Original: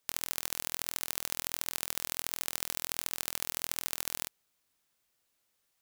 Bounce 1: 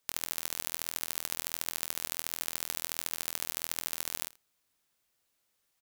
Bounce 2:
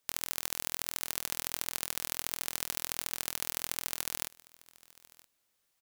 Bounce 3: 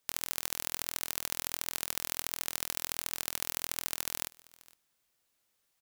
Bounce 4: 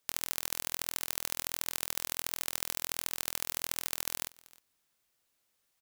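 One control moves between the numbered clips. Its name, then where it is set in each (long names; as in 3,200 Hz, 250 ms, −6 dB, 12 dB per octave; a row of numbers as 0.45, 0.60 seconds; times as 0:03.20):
single-tap delay, delay time: 84, 972, 462, 312 milliseconds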